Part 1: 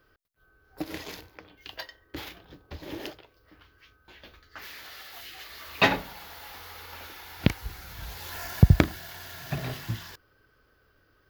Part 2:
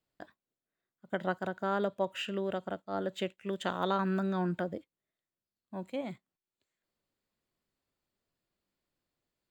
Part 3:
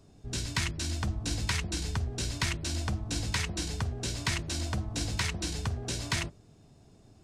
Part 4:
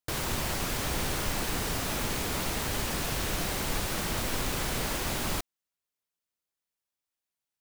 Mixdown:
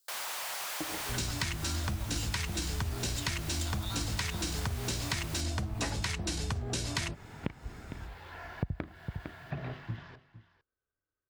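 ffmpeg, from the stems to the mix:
ffmpeg -i stem1.wav -i stem2.wav -i stem3.wav -i stem4.wav -filter_complex "[0:a]agate=range=-24dB:threshold=-45dB:ratio=16:detection=peak,lowpass=2200,volume=-4.5dB,asplit=2[link_01][link_02];[link_02]volume=-17dB[link_03];[1:a]highpass=1200,aexciter=amount=7.7:drive=7.9:freq=3800,volume=-2.5dB,asplit=2[link_04][link_05];[link_05]volume=-10dB[link_06];[2:a]dynaudnorm=framelen=180:gausssize=3:maxgain=10.5dB,adelay=850,volume=-2.5dB[link_07];[3:a]highpass=frequency=660:width=0.5412,highpass=frequency=660:width=1.3066,asoftclip=type=hard:threshold=-31dB,volume=-2.5dB,asplit=2[link_08][link_09];[link_09]volume=-16.5dB[link_10];[link_03][link_06][link_10]amix=inputs=3:normalize=0,aecho=0:1:456:1[link_11];[link_01][link_04][link_07][link_08][link_11]amix=inputs=5:normalize=0,acompressor=threshold=-31dB:ratio=6" out.wav

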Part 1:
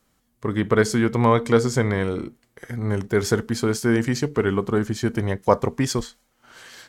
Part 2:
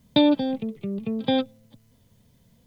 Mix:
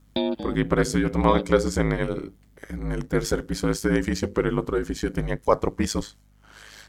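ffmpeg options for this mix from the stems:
ffmpeg -i stem1.wav -i stem2.wav -filter_complex "[0:a]volume=0.5dB[link_01];[1:a]volume=-4.5dB[link_02];[link_01][link_02]amix=inputs=2:normalize=0,aeval=exprs='val(0)*sin(2*PI*53*n/s)':channel_layout=same,aeval=exprs='val(0)+0.00158*(sin(2*PI*50*n/s)+sin(2*PI*2*50*n/s)/2+sin(2*PI*3*50*n/s)/3+sin(2*PI*4*50*n/s)/4+sin(2*PI*5*50*n/s)/5)':channel_layout=same" out.wav

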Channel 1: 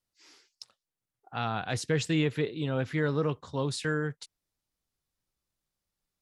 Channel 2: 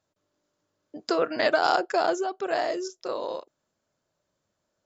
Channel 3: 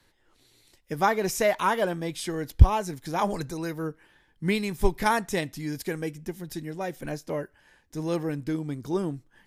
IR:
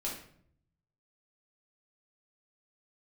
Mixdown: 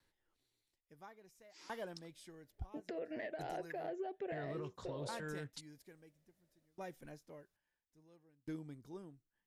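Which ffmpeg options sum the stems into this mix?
-filter_complex "[0:a]alimiter=limit=-24dB:level=0:latency=1:release=113,adelay=1350,volume=-2dB,asplit=3[link_01][link_02][link_03];[link_01]atrim=end=2.66,asetpts=PTS-STARTPTS,afade=type=out:start_time=2.656:duration=0.004:curve=hsin[link_04];[link_02]atrim=start=2.66:end=4.32,asetpts=PTS-STARTPTS,volume=0[link_05];[link_03]atrim=start=4.32,asetpts=PTS-STARTPTS,afade=type=in:duration=0.004:curve=hsin[link_06];[link_04][link_05][link_06]concat=n=3:v=0:a=1[link_07];[1:a]acompressor=threshold=-25dB:ratio=6,firequalizer=gain_entry='entry(650,0);entry(1200,-22);entry(1800,3);entry(5000,-22)':delay=0.05:min_phase=1,adelay=1800,volume=-5dB[link_08];[2:a]aeval=exprs='val(0)*pow(10,-30*if(lt(mod(0.59*n/s,1),2*abs(0.59)/1000),1-mod(0.59*n/s,1)/(2*abs(0.59)/1000),(mod(0.59*n/s,1)-2*abs(0.59)/1000)/(1-2*abs(0.59)/1000))/20)':channel_layout=same,volume=-14dB[link_09];[link_07][link_08]amix=inputs=2:normalize=0,alimiter=level_in=7dB:limit=-24dB:level=0:latency=1:release=259,volume=-7dB,volume=0dB[link_10];[link_09][link_10]amix=inputs=2:normalize=0,asoftclip=type=tanh:threshold=-27dB,alimiter=level_in=10.5dB:limit=-24dB:level=0:latency=1:release=306,volume=-10.5dB"

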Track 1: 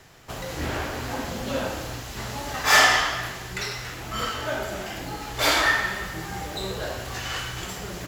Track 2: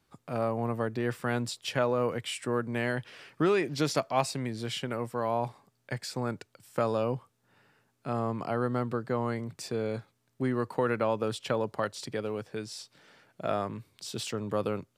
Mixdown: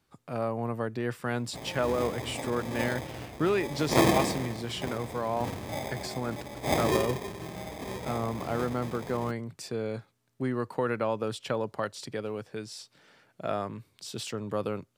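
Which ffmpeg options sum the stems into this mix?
ffmpeg -i stem1.wav -i stem2.wav -filter_complex "[0:a]acrusher=samples=31:mix=1:aa=0.000001,highpass=81,adelay=1250,volume=-6dB[link_01];[1:a]volume=-1dB[link_02];[link_01][link_02]amix=inputs=2:normalize=0" out.wav

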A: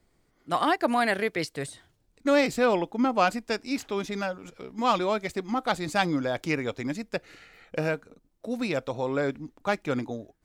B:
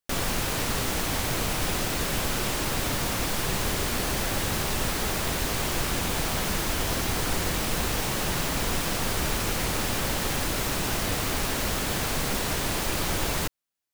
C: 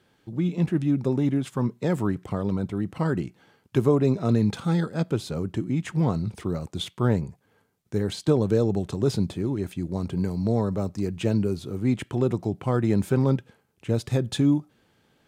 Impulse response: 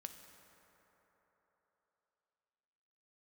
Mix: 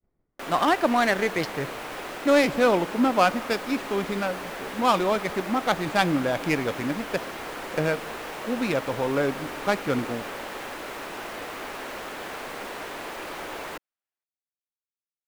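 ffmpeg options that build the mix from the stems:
-filter_complex "[0:a]agate=range=-33dB:threshold=-59dB:ratio=3:detection=peak,adynamicsmooth=sensitivity=6:basefreq=1500,volume=0.5dB,asplit=2[link_01][link_02];[link_02]volume=-4.5dB[link_03];[1:a]acrossover=split=290 2800:gain=0.0891 1 0.224[link_04][link_05][link_06];[link_04][link_05][link_06]amix=inputs=3:normalize=0,adelay=300,volume=-3dB[link_07];[3:a]atrim=start_sample=2205[link_08];[link_03][link_08]afir=irnorm=-1:irlink=0[link_09];[link_01][link_07][link_09]amix=inputs=3:normalize=0"

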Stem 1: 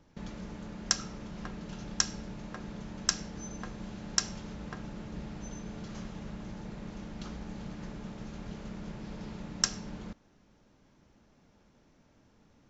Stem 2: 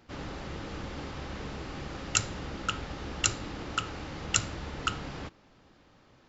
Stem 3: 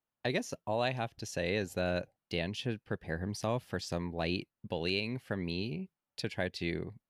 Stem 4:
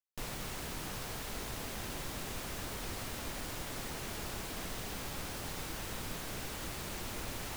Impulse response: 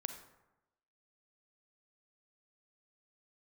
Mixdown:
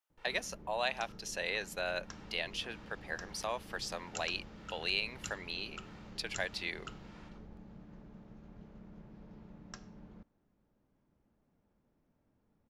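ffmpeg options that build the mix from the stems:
-filter_complex "[0:a]lowpass=frequency=1100:poles=1,adelay=100,volume=-11dB[link_01];[1:a]adelay=2000,volume=-17.5dB[link_02];[2:a]highpass=780,volume=2dB[link_03];[3:a]lowpass=2500,aecho=1:1:2.2:0.83,acrossover=split=590[link_04][link_05];[link_04]aeval=exprs='val(0)*(1-1/2+1/2*cos(2*PI*1.6*n/s))':channel_layout=same[link_06];[link_05]aeval=exprs='val(0)*(1-1/2-1/2*cos(2*PI*1.6*n/s))':channel_layout=same[link_07];[link_06][link_07]amix=inputs=2:normalize=0,volume=-14.5dB[link_08];[link_01][link_02][link_03][link_08]amix=inputs=4:normalize=0"

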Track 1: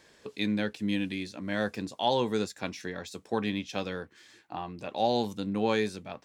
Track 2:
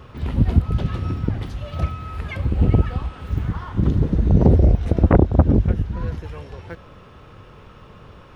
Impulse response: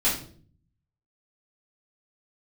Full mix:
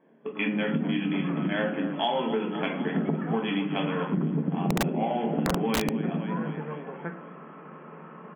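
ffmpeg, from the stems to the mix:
-filter_complex "[0:a]highpass=140,adynamicsmooth=sensitivity=6:basefreq=580,lowpass=frequency=5700:width_type=q:width=4.9,volume=2dB,asplit=4[link_01][link_02][link_03][link_04];[link_02]volume=-9.5dB[link_05];[link_03]volume=-10dB[link_06];[1:a]lowpass=frequency=2000:width=0.5412,lowpass=frequency=2000:width=1.3066,adelay=350,volume=0.5dB,asplit=2[link_07][link_08];[link_08]volume=-17dB[link_09];[link_04]apad=whole_len=383920[link_10];[link_07][link_10]sidechaincompress=threshold=-32dB:ratio=12:attack=16:release=251[link_11];[2:a]atrim=start_sample=2205[link_12];[link_05][link_09]amix=inputs=2:normalize=0[link_13];[link_13][link_12]afir=irnorm=-1:irlink=0[link_14];[link_06]aecho=0:1:254|508|762|1016|1270|1524|1778|2032|2286:1|0.57|0.325|0.185|0.106|0.0602|0.0343|0.0195|0.0111[link_15];[link_01][link_11][link_14][link_15]amix=inputs=4:normalize=0,afftfilt=real='re*between(b*sr/4096,150,3400)':imag='im*between(b*sr/4096,150,3400)':win_size=4096:overlap=0.75,aeval=exprs='(mod(2.11*val(0)+1,2)-1)/2.11':channel_layout=same,acompressor=threshold=-23dB:ratio=10"

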